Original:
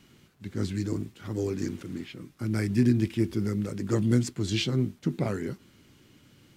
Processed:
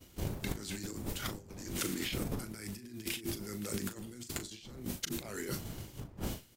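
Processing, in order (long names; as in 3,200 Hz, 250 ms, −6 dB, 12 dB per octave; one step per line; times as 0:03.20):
wind on the microphone 100 Hz −24 dBFS
RIAA equalisation recording
downward expander −39 dBFS
transient designer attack +5 dB, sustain +1 dB
compressor whose output falls as the input rises −43 dBFS, ratio −1
double-tracking delay 38 ms −10.5 dB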